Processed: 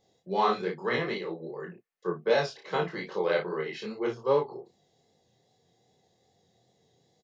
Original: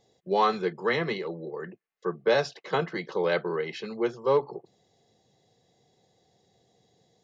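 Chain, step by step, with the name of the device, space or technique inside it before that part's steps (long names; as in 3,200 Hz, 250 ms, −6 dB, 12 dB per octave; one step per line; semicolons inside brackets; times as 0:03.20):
double-tracked vocal (double-tracking delay 33 ms −5 dB; chorus effect 2.5 Hz, delay 20 ms, depth 5.7 ms)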